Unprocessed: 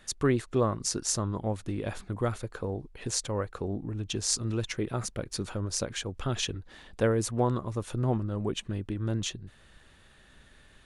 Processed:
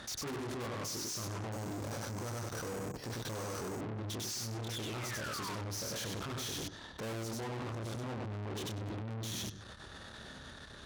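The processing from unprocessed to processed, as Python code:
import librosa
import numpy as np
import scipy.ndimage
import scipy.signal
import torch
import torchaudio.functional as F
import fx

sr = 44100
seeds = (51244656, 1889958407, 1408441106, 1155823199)

y = fx.spec_paint(x, sr, seeds[0], shape='fall', start_s=4.71, length_s=0.8, low_hz=900.0, high_hz=3700.0, level_db=-38.0)
y = fx.high_shelf_res(y, sr, hz=1800.0, db=-6.5, q=1.5)
y = fx.doubler(y, sr, ms=27.0, db=-3.0)
y = fx.echo_feedback(y, sr, ms=97, feedback_pct=25, wet_db=-4)
y = fx.resample_bad(y, sr, factor=6, down='filtered', up='hold', at=(1.52, 3.81))
y = fx.band_shelf(y, sr, hz=4600.0, db=9.5, octaves=1.1)
y = fx.level_steps(y, sr, step_db=21)
y = fx.tube_stage(y, sr, drive_db=56.0, bias=0.45)
y = scipy.signal.sosfilt(scipy.signal.butter(2, 65.0, 'highpass', fs=sr, output='sos'), y)
y = y * librosa.db_to_amplitude(17.5)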